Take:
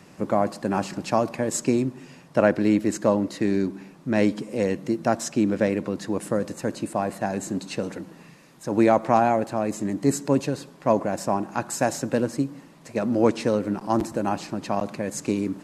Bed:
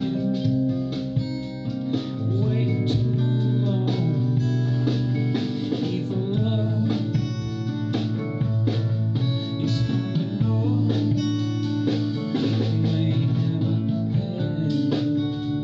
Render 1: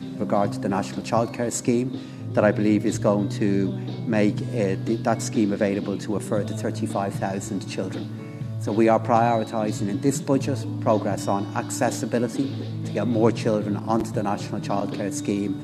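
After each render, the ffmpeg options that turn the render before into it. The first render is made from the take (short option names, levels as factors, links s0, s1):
-filter_complex "[1:a]volume=0.376[s0];[0:a][s0]amix=inputs=2:normalize=0"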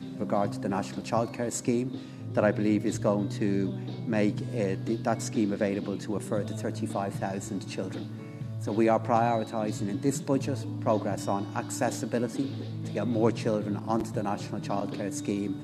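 -af "volume=0.531"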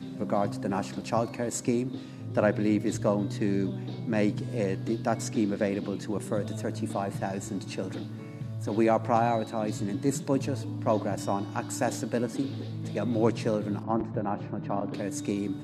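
-filter_complex "[0:a]asettb=1/sr,asplit=3[s0][s1][s2];[s0]atrim=end=13.834[s3];[s1]atrim=start=13.83:end=14.94,asetpts=PTS-STARTPTS,afade=t=in:d=0.004:c=qsin,afade=t=out:st=1.106:d=0.004:c=qsin,lowpass=1800[s4];[s2]atrim=start=14.936[s5];[s3][s4]acrossfade=d=0.004:c1=hsin:c2=qsin[s6];[s6][s5]acrossfade=d=0.004:c1=qsin:c2=hsin"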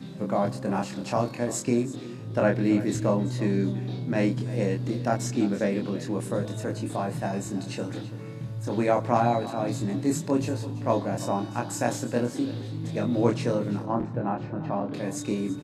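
-filter_complex "[0:a]asplit=2[s0][s1];[s1]adelay=25,volume=0.708[s2];[s0][s2]amix=inputs=2:normalize=0,aecho=1:1:333:0.158"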